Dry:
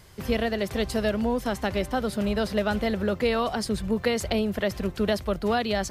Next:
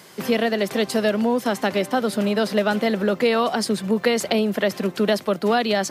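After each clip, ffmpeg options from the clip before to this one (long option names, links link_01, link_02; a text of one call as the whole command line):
ffmpeg -i in.wav -filter_complex "[0:a]highpass=frequency=180:width=0.5412,highpass=frequency=180:width=1.3066,asplit=2[link_01][link_02];[link_02]acompressor=threshold=-33dB:ratio=6,volume=-1.5dB[link_03];[link_01][link_03]amix=inputs=2:normalize=0,volume=3.5dB" out.wav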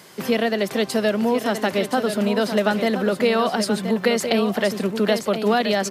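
ffmpeg -i in.wav -af "aecho=1:1:1024:0.376" out.wav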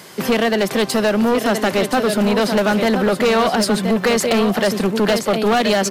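ffmpeg -i in.wav -af "asoftclip=type=hard:threshold=-18.5dB,volume=6.5dB" out.wav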